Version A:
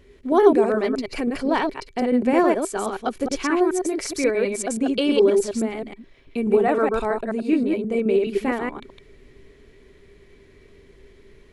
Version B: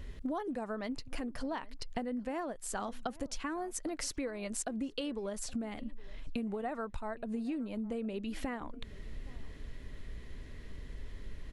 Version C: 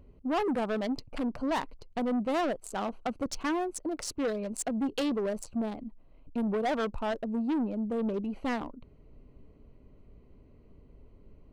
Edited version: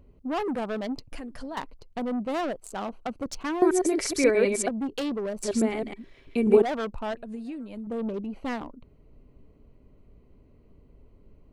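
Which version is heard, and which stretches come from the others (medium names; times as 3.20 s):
C
1.12–1.57 s: from B
3.62–4.69 s: from A
5.43–6.62 s: from A
7.15–7.87 s: from B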